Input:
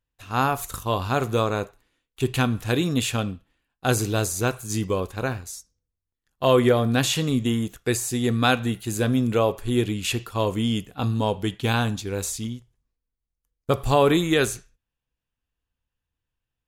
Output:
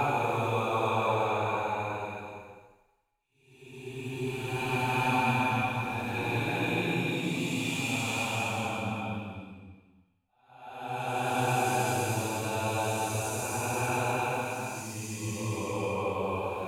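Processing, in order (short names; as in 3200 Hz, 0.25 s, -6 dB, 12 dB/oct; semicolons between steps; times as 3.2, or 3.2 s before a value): small resonant body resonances 870/2400 Hz, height 18 dB, ringing for 25 ms; expander -38 dBFS; Paulstretch 4.3×, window 0.50 s, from 1.2; gain -9 dB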